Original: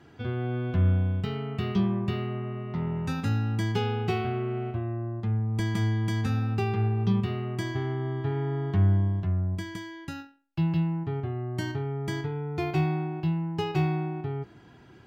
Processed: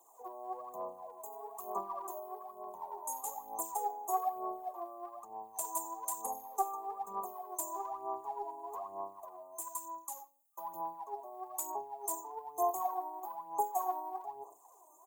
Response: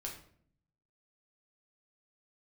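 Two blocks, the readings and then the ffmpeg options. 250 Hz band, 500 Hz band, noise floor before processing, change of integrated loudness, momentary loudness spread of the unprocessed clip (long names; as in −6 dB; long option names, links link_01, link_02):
−25.5 dB, −10.0 dB, −53 dBFS, −11.0 dB, 8 LU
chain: -filter_complex "[0:a]highpass=frequency=690:width=0.5412,highpass=frequency=690:width=1.3066,aemphasis=mode=production:type=75kf,afftfilt=real='re*(1-between(b*sr/4096,1200,6300))':imag='im*(1-between(b*sr/4096,1200,6300))':win_size=4096:overlap=0.75,asplit=2[link_01][link_02];[link_02]adelay=92,lowpass=frequency=3200:poles=1,volume=-21dB,asplit=2[link_03][link_04];[link_04]adelay=92,lowpass=frequency=3200:poles=1,volume=0.29[link_05];[link_03][link_05]amix=inputs=2:normalize=0[link_06];[link_01][link_06]amix=inputs=2:normalize=0,aphaser=in_gain=1:out_gain=1:delay=3.3:decay=0.67:speed=1.1:type=sinusoidal"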